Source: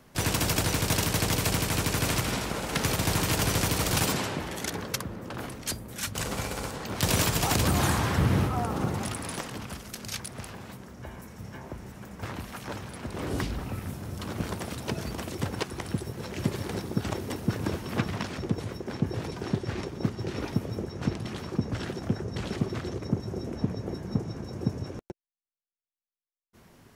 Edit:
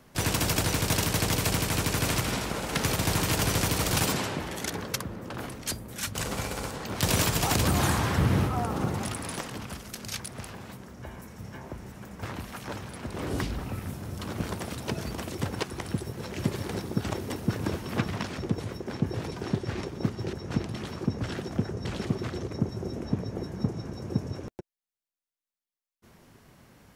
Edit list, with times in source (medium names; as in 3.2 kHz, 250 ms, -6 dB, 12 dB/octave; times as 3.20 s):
20.33–20.84 s: delete